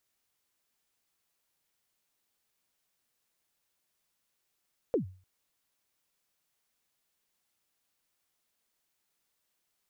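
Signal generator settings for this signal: kick drum length 0.30 s, from 540 Hz, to 93 Hz, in 0.113 s, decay 0.40 s, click off, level -21 dB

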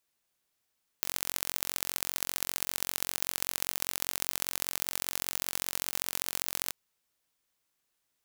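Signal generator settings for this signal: pulse train 45.1/s, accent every 3, -2 dBFS 5.68 s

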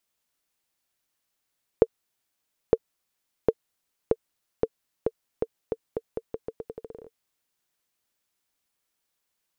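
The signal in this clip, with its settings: bouncing ball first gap 0.91 s, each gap 0.83, 452 Hz, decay 47 ms -4 dBFS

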